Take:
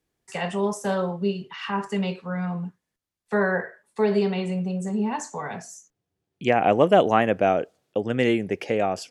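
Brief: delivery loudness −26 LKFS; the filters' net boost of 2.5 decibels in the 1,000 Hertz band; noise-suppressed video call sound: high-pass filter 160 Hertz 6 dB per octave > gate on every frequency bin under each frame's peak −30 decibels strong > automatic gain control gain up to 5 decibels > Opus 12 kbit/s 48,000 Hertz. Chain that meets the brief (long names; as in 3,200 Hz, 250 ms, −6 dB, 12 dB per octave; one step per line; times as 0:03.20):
high-pass filter 160 Hz 6 dB per octave
parametric band 1,000 Hz +4 dB
gate on every frequency bin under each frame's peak −30 dB strong
automatic gain control gain up to 5 dB
level −1.5 dB
Opus 12 kbit/s 48,000 Hz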